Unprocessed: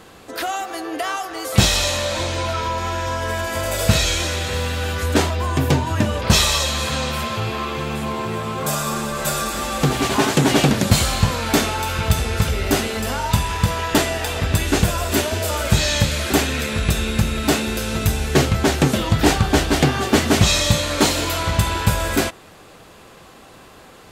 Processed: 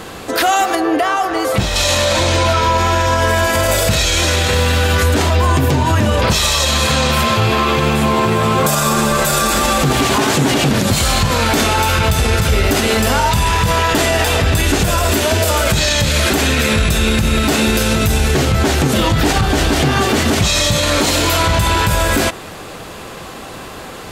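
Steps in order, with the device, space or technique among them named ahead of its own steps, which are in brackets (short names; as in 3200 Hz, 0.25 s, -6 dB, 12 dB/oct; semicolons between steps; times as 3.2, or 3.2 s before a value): loud club master (compressor 2.5:1, threshold -18 dBFS, peak gain reduction 7.5 dB; hard clip -7.5 dBFS, distortion -43 dB; maximiser +18 dB); 0.75–1.76 high shelf 2800 Hz -10.5 dB; gain -4.5 dB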